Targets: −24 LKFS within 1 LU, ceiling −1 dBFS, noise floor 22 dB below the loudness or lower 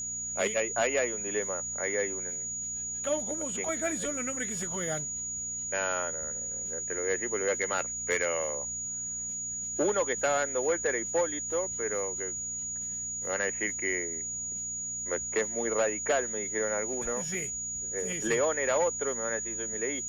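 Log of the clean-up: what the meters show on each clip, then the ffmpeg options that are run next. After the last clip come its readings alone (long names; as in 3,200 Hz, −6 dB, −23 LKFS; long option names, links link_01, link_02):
mains hum 60 Hz; hum harmonics up to 240 Hz; level of the hum −51 dBFS; interfering tone 6,800 Hz; level of the tone −33 dBFS; integrated loudness −30.0 LKFS; sample peak −18.0 dBFS; target loudness −24.0 LKFS
→ -af "bandreject=frequency=60:width_type=h:width=4,bandreject=frequency=120:width_type=h:width=4,bandreject=frequency=180:width_type=h:width=4,bandreject=frequency=240:width_type=h:width=4"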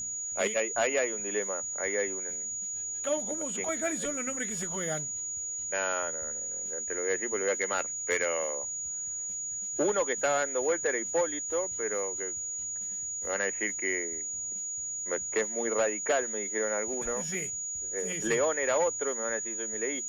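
mains hum none found; interfering tone 6,800 Hz; level of the tone −33 dBFS
→ -af "bandreject=frequency=6800:width=30"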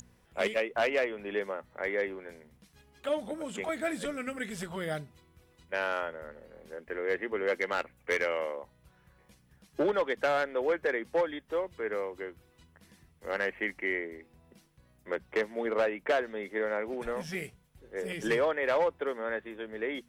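interfering tone none found; integrated loudness −32.5 LKFS; sample peak −19.5 dBFS; target loudness −24.0 LKFS
→ -af "volume=8.5dB"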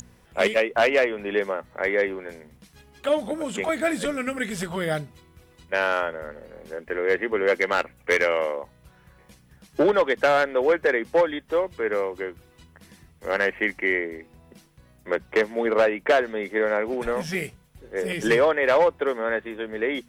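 integrated loudness −24.0 LKFS; sample peak −11.0 dBFS; background noise floor −57 dBFS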